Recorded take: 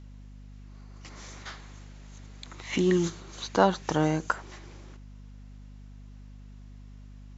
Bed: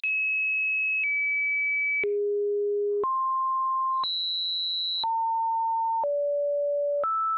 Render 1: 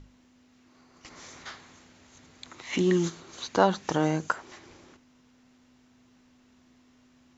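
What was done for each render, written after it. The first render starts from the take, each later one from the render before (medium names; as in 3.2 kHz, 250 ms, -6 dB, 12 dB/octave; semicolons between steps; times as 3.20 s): hum notches 50/100/150/200 Hz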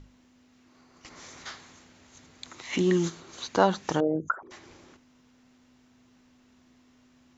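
1.36–2.67 s: dynamic bell 6.3 kHz, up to +4 dB, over -58 dBFS, Q 0.75; 4.00–4.51 s: resonances exaggerated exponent 3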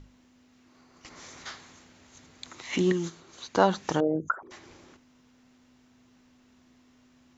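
2.92–3.55 s: gain -5 dB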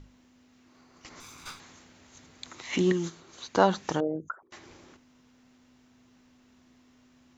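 1.20–1.60 s: comb filter that takes the minimum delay 0.81 ms; 3.78–4.52 s: fade out, to -19.5 dB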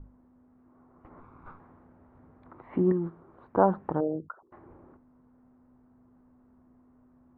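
low-pass 1.2 kHz 24 dB/octave; bass shelf 70 Hz +6 dB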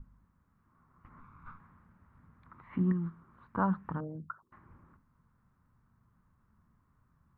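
high-order bell 500 Hz -16 dB; hum notches 50/100/150/200/250 Hz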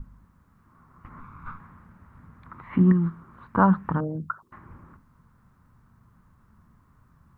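trim +11 dB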